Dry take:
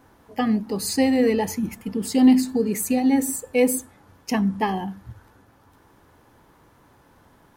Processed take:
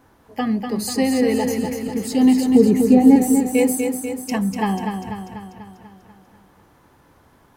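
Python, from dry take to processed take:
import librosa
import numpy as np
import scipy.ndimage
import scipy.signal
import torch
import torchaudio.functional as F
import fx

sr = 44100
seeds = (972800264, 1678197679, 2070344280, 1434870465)

p1 = fx.tilt_shelf(x, sr, db=9.5, hz=1500.0, at=(2.46, 3.16))
y = p1 + fx.echo_feedback(p1, sr, ms=245, feedback_pct=58, wet_db=-6, dry=0)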